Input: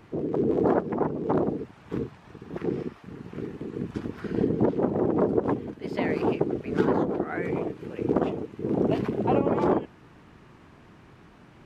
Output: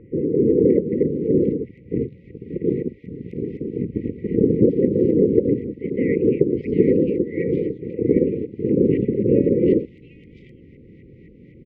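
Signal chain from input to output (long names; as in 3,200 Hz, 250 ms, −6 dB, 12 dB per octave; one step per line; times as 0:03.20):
auto-filter low-pass saw up 3.9 Hz 890–1,800 Hz
linear-phase brick-wall band-stop 550–1,900 Hz
multiband delay without the direct sound lows, highs 750 ms, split 2,700 Hz
level +7 dB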